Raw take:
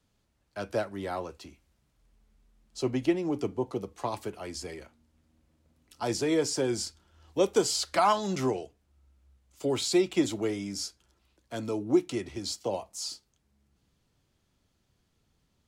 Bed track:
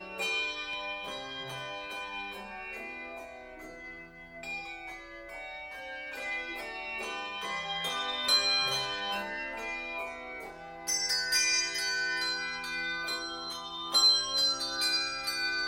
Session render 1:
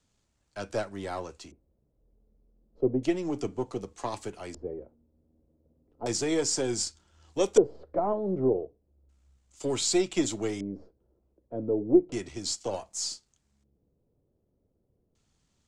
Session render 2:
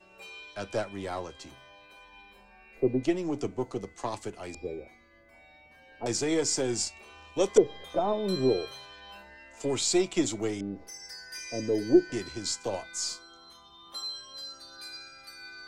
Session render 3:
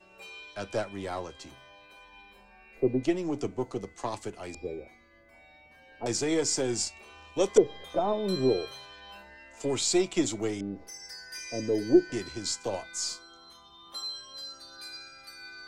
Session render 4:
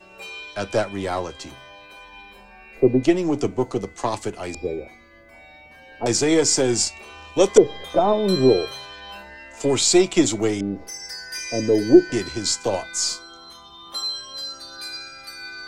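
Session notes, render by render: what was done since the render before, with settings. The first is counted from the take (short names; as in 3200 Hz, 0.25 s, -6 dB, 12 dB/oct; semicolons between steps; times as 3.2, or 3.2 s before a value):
half-wave gain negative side -3 dB; LFO low-pass square 0.33 Hz 490–7600 Hz
add bed track -14 dB
nothing audible
gain +9.5 dB; limiter -1 dBFS, peak gain reduction 2.5 dB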